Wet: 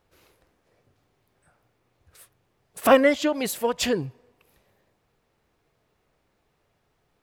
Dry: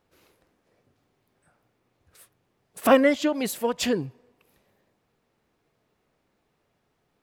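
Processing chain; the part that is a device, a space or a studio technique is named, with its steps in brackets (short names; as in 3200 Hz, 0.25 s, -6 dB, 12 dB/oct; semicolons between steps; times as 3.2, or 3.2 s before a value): low shelf boost with a cut just above (low shelf 83 Hz +6.5 dB; bell 230 Hz -4.5 dB 1.1 oct); gain +2 dB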